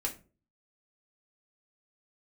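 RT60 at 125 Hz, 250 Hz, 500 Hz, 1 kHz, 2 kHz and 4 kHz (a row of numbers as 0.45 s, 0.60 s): 0.60 s, 0.50 s, 0.45 s, 0.30 s, 0.25 s, 0.20 s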